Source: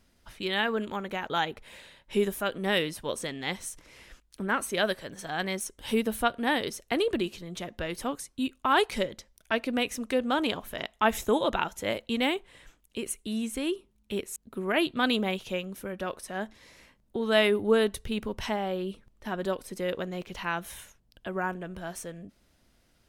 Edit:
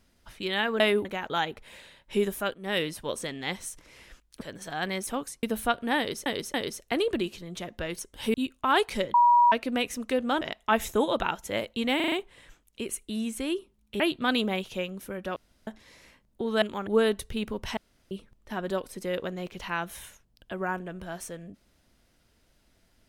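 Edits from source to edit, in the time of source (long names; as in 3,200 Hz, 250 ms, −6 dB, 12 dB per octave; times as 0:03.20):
0:00.80–0:01.05: swap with 0:17.37–0:17.62
0:02.54–0:02.82: fade in, from −19 dB
0:04.41–0:04.98: remove
0:05.64–0:05.99: swap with 0:07.99–0:08.35
0:06.54–0:06.82: repeat, 3 plays
0:09.15–0:09.53: beep over 961 Hz −15.5 dBFS
0:10.42–0:10.74: remove
0:12.29: stutter 0.04 s, 5 plays
0:14.17–0:14.75: remove
0:16.11–0:16.42: fill with room tone
0:18.52–0:18.86: fill with room tone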